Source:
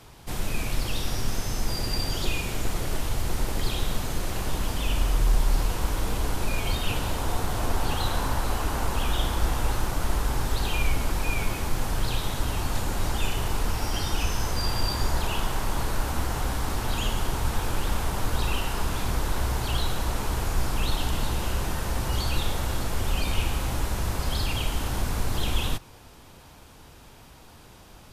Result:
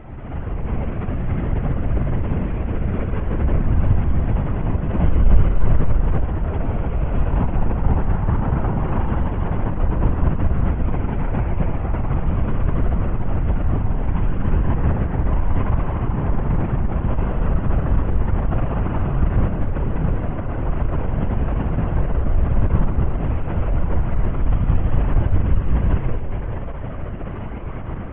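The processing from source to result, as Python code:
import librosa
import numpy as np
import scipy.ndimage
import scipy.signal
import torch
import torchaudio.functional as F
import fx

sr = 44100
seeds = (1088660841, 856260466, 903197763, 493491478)

p1 = fx.delta_mod(x, sr, bps=16000, step_db=-31.0)
p2 = scipy.signal.sosfilt(scipy.signal.butter(2, 79.0, 'highpass', fs=sr, output='sos'), p1)
p3 = fx.tilt_eq(p2, sr, slope=-3.5)
p4 = fx.notch(p3, sr, hz=420.0, q=12.0)
p5 = np.clip(10.0 ** (22.5 / 20.0) * p4, -1.0, 1.0) / 10.0 ** (22.5 / 20.0)
p6 = p4 + F.gain(torch.from_numpy(p5), -4.5).numpy()
p7 = fx.dmg_crackle(p6, sr, seeds[0], per_s=360.0, level_db=-41.0)
p8 = fx.pitch_keep_formants(p7, sr, semitones=-9.0)
p9 = fx.air_absorb(p8, sr, metres=440.0)
p10 = p9 + fx.echo_single(p9, sr, ms=239, db=-3.5, dry=0)
p11 = fx.rev_spring(p10, sr, rt60_s=3.0, pass_ms=(43, 48), chirp_ms=30, drr_db=-8.0)
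p12 = fx.lpc_vocoder(p11, sr, seeds[1], excitation='whisper', order=16)
y = F.gain(torch.from_numpy(p12), -9.0).numpy()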